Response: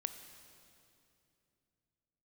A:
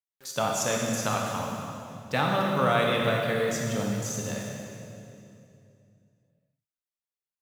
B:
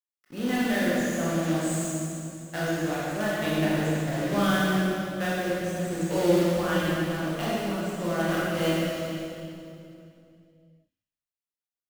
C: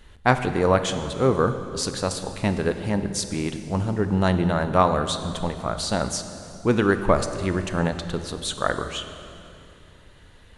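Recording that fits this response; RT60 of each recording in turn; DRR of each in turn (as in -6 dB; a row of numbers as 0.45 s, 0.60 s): C; 2.7 s, 2.7 s, 2.7 s; -1.5 dB, -8.5 dB, 8.5 dB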